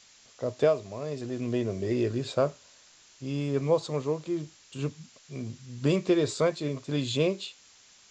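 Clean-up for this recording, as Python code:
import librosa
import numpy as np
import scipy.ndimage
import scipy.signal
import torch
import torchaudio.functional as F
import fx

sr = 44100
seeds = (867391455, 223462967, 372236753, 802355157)

y = fx.noise_reduce(x, sr, print_start_s=7.59, print_end_s=8.09, reduce_db=16.0)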